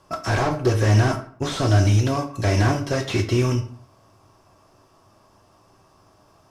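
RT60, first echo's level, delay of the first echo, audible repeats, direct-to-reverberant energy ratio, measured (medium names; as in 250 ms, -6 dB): 0.55 s, no echo, no echo, no echo, 4.0 dB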